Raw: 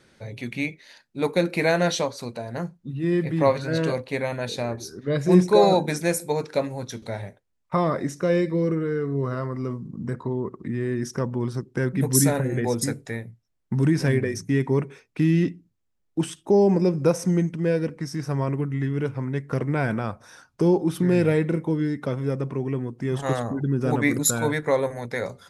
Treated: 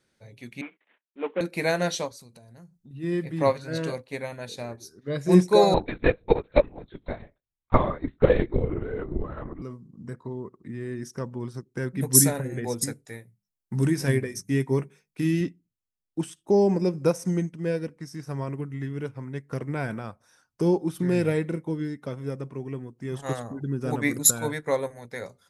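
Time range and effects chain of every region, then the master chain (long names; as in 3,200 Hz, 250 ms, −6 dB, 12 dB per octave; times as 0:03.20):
0:00.61–0:01.41: variable-slope delta modulation 16 kbit/s + elliptic high-pass filter 200 Hz + noise gate −53 dBFS, range −20 dB
0:02.11–0:02.91: bass and treble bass +9 dB, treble +8 dB + downward compressor 8 to 1, threshold −34 dBFS
0:05.74–0:09.62: linear-prediction vocoder at 8 kHz whisper + transient designer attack +8 dB, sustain −3 dB
0:13.05–0:15.41: high-shelf EQ 7,500 Hz +8 dB + mains-hum notches 50/100/150/200 Hz + double-tracking delay 15 ms −12 dB
whole clip: high-shelf EQ 6,300 Hz +8 dB; expander for the loud parts 1.5 to 1, over −41 dBFS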